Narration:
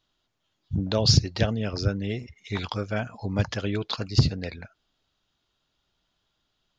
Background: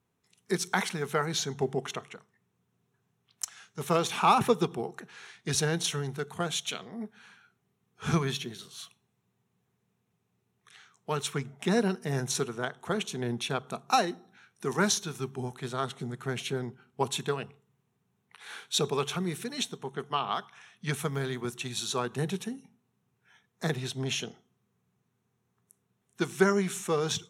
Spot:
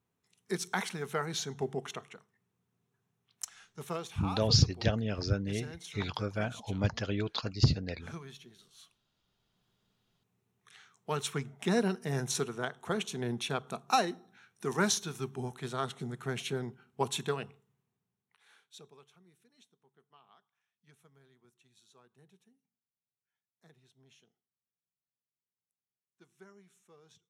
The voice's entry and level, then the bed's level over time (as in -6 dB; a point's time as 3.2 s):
3.45 s, -5.0 dB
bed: 3.69 s -5 dB
4.22 s -17.5 dB
8.4 s -17.5 dB
9.7 s -2.5 dB
17.6 s -2.5 dB
19.15 s -32 dB